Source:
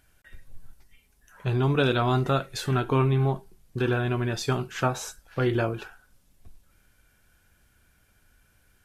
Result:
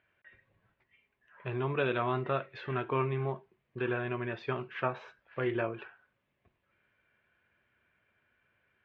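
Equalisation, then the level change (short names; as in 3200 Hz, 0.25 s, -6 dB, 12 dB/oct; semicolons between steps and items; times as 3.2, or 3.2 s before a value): air absorption 53 m; speaker cabinet 140–2500 Hz, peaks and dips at 180 Hz -7 dB, 280 Hz -9 dB, 470 Hz -4 dB, 790 Hz -9 dB, 1400 Hz -7 dB; low shelf 250 Hz -9 dB; 0.0 dB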